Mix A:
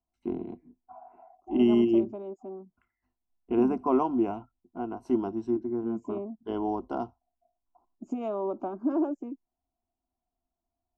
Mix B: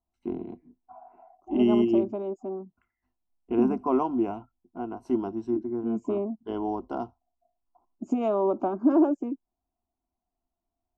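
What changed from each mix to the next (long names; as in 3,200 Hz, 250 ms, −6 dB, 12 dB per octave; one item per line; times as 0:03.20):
second voice +6.5 dB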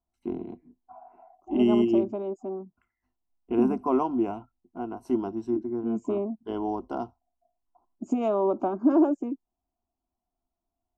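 master: remove high-frequency loss of the air 55 metres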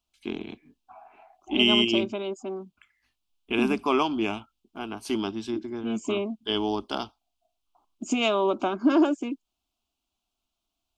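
first voice: remove EQ curve with evenly spaced ripples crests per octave 2, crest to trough 9 dB
master: remove drawn EQ curve 820 Hz 0 dB, 3,500 Hz −28 dB, 6,000 Hz −18 dB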